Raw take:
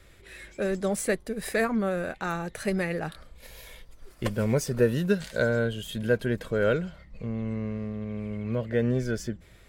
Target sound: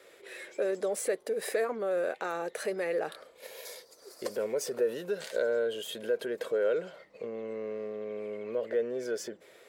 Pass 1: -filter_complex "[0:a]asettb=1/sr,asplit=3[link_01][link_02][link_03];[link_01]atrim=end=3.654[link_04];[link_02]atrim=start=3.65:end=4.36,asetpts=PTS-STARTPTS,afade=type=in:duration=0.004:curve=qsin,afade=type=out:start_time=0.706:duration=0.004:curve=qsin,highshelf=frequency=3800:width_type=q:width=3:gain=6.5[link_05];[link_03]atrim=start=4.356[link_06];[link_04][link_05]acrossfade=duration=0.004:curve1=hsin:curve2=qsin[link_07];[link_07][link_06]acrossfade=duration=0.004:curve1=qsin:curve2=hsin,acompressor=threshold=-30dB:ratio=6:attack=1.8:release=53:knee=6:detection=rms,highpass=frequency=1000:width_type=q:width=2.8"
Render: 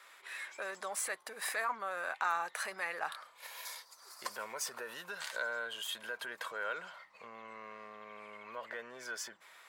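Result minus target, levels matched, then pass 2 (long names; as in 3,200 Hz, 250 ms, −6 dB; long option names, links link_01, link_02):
1,000 Hz band +10.0 dB
-filter_complex "[0:a]asettb=1/sr,asplit=3[link_01][link_02][link_03];[link_01]atrim=end=3.654[link_04];[link_02]atrim=start=3.65:end=4.36,asetpts=PTS-STARTPTS,afade=type=in:duration=0.004:curve=qsin,afade=type=out:start_time=0.706:duration=0.004:curve=qsin,highshelf=frequency=3800:width_type=q:width=3:gain=6.5[link_05];[link_03]atrim=start=4.356[link_06];[link_04][link_05]acrossfade=duration=0.004:curve1=hsin:curve2=qsin[link_07];[link_07][link_06]acrossfade=duration=0.004:curve1=qsin:curve2=hsin,acompressor=threshold=-30dB:ratio=6:attack=1.8:release=53:knee=6:detection=rms,highpass=frequency=460:width_type=q:width=2.8"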